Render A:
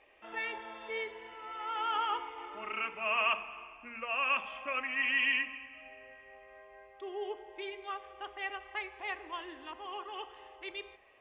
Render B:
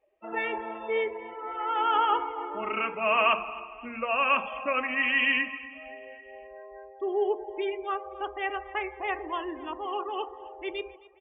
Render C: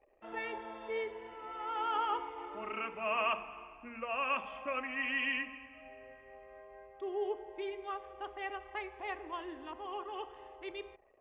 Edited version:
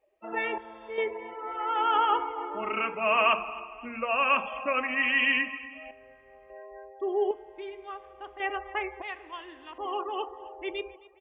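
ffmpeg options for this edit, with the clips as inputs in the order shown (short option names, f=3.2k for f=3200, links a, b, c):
-filter_complex "[2:a]asplit=3[a][b][c];[1:a]asplit=5[d][e][f][g][h];[d]atrim=end=0.582[i];[a]atrim=start=0.578:end=0.982[j];[e]atrim=start=0.978:end=5.912[k];[b]atrim=start=5.908:end=6.502[l];[f]atrim=start=6.498:end=7.312[m];[c]atrim=start=7.308:end=8.402[n];[g]atrim=start=8.398:end=9.022[o];[0:a]atrim=start=9.018:end=9.782[p];[h]atrim=start=9.778[q];[i][j]acrossfade=d=0.004:c1=hsin:c2=hsin[r];[r][k]acrossfade=d=0.004:c1=hsin:c2=hsin[s];[s][l]acrossfade=d=0.004:c1=hsin:c2=hsin[t];[t][m]acrossfade=d=0.004:c1=hsin:c2=hsin[u];[u][n]acrossfade=d=0.004:c1=hsin:c2=hsin[v];[v][o]acrossfade=d=0.004:c1=hsin:c2=hsin[w];[w][p]acrossfade=d=0.004:c1=hsin:c2=hsin[x];[x][q]acrossfade=d=0.004:c1=hsin:c2=hsin"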